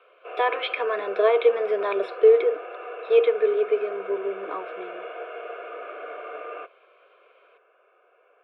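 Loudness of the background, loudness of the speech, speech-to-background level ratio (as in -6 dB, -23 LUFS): -37.0 LUFS, -22.5 LUFS, 14.5 dB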